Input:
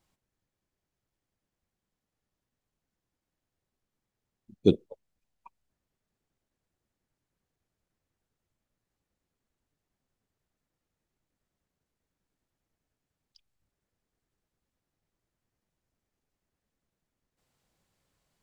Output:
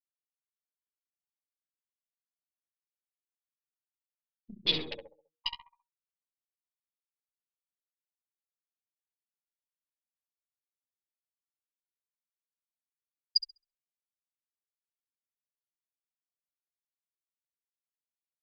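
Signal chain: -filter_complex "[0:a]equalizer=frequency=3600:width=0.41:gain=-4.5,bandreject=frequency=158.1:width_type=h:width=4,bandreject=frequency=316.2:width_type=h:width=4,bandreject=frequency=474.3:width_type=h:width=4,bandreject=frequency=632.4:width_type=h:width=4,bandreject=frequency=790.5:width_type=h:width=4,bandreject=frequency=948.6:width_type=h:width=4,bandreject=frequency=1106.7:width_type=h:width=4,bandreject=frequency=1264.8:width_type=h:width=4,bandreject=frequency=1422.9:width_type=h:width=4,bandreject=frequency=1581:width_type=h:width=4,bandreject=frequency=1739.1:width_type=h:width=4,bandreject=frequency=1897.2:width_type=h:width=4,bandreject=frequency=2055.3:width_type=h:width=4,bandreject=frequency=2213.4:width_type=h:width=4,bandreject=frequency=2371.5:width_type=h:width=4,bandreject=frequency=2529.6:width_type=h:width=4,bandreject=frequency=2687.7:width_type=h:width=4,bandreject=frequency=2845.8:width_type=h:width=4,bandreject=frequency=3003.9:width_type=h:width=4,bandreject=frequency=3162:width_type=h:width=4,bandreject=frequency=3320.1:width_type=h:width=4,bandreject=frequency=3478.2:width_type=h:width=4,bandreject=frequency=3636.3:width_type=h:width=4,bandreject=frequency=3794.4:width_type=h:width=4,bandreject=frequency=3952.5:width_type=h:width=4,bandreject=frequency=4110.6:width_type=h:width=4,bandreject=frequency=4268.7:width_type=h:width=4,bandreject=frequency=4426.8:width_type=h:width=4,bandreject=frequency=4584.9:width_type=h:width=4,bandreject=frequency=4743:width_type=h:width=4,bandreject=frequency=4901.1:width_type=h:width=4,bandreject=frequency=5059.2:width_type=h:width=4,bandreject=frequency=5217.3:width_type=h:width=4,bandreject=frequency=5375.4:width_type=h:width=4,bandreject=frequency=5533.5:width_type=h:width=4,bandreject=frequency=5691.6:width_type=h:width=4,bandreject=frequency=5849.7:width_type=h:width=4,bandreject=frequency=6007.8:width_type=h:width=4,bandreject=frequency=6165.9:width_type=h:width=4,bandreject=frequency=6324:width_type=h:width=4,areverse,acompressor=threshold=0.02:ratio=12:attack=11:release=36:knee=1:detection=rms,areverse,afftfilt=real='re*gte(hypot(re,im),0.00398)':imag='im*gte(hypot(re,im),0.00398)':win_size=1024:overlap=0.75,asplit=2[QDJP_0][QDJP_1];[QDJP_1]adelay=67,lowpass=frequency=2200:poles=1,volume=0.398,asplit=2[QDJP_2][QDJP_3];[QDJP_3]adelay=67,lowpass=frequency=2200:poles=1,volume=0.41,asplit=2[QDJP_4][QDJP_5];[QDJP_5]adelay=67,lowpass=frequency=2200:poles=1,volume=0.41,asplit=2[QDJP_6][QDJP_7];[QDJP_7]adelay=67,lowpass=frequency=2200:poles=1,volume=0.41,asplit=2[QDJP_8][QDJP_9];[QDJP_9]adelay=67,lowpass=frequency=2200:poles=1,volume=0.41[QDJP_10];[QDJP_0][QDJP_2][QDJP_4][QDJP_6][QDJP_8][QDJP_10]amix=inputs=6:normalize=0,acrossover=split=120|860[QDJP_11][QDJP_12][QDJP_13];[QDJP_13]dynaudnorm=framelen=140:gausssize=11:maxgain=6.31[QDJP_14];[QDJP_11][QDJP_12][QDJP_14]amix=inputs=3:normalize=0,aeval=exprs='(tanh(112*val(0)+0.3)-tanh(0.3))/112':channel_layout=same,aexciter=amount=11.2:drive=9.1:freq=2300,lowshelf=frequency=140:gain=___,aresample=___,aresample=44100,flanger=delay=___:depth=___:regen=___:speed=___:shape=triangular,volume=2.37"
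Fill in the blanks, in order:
5, 11025, 3.7, 9.9, -15, 0.45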